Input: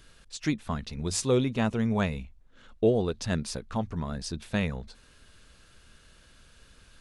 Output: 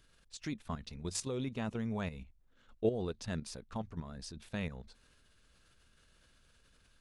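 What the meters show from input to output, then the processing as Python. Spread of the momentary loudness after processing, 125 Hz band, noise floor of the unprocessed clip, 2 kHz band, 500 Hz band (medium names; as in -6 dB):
14 LU, -10.0 dB, -58 dBFS, -10.5 dB, -10.0 dB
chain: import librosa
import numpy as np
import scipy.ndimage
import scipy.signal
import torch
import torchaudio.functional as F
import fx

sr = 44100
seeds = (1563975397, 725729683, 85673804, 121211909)

y = fx.level_steps(x, sr, step_db=10)
y = F.gain(torch.from_numpy(y), -6.0).numpy()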